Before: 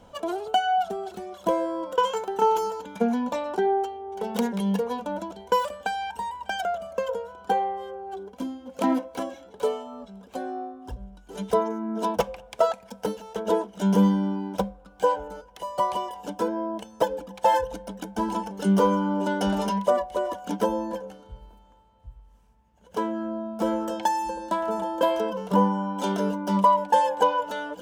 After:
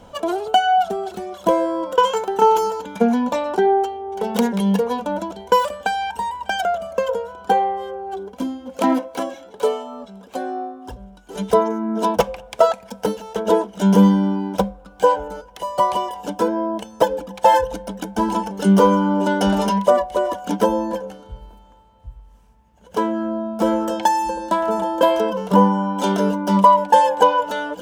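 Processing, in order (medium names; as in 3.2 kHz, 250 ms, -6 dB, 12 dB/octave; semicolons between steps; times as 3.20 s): 8.77–11.36 s: bass shelf 140 Hz -9.5 dB; trim +7 dB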